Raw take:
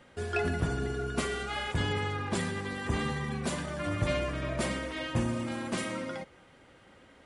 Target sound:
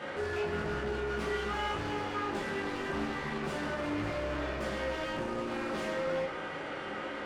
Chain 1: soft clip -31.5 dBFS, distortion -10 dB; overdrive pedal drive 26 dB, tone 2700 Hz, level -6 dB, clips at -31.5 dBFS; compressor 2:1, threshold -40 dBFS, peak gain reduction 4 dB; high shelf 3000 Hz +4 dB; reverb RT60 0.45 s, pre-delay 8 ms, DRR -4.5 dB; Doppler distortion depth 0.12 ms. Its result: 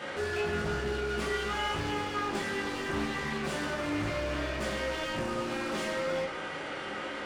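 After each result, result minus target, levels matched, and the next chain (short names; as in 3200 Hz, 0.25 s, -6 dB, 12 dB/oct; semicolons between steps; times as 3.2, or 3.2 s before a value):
8000 Hz band +5.5 dB; soft clip: distortion -5 dB
soft clip -31.5 dBFS, distortion -10 dB; overdrive pedal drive 26 dB, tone 2700 Hz, level -6 dB, clips at -31.5 dBFS; compressor 2:1, threshold -40 dBFS, peak gain reduction 4 dB; high shelf 3000 Hz -4.5 dB; reverb RT60 0.45 s, pre-delay 8 ms, DRR -4.5 dB; Doppler distortion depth 0.12 ms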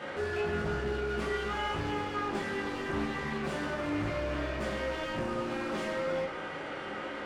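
soft clip: distortion -5 dB
soft clip -40.5 dBFS, distortion -5 dB; overdrive pedal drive 26 dB, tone 2700 Hz, level -6 dB, clips at -31.5 dBFS; compressor 2:1, threshold -40 dBFS, peak gain reduction 2.5 dB; high shelf 3000 Hz -4.5 dB; reverb RT60 0.45 s, pre-delay 8 ms, DRR -4.5 dB; Doppler distortion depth 0.12 ms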